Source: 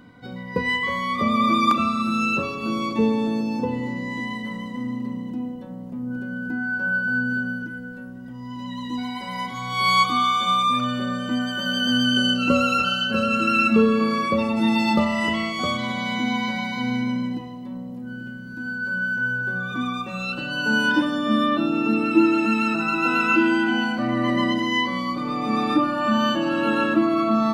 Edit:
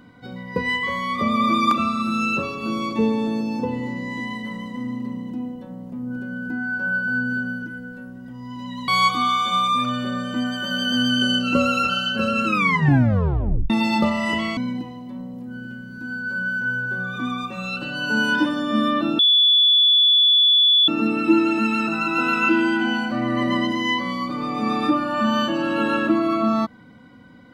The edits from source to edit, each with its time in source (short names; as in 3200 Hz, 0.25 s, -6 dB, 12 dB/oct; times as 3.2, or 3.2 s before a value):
8.88–9.83 cut
13.41 tape stop 1.24 s
15.52–17.13 cut
21.75 add tone 3440 Hz -12 dBFS 1.69 s